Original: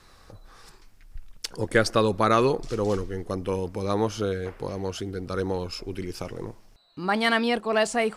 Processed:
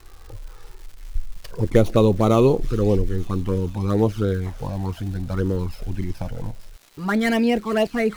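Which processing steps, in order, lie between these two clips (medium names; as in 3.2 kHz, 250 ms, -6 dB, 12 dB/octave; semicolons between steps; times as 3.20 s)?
dead-time distortion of 0.06 ms; tilt EQ -2 dB/octave; touch-sensitive flanger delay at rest 2.8 ms, full sweep at -16 dBFS; crackle 310 per s -41 dBFS; feedback echo behind a high-pass 445 ms, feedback 73%, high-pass 3.3 kHz, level -12.5 dB; trim +4 dB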